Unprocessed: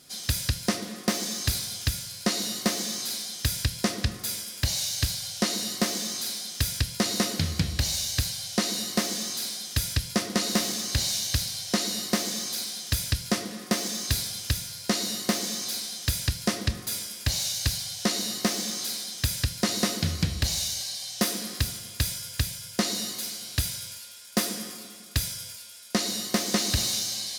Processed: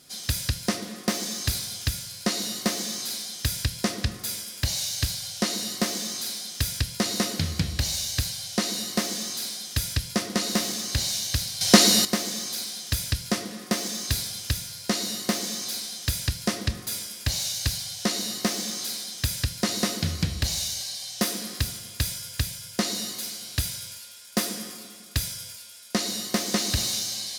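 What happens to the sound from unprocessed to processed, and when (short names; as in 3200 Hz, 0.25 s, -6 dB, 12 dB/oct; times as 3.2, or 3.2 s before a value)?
11.61–12.05 gain +11.5 dB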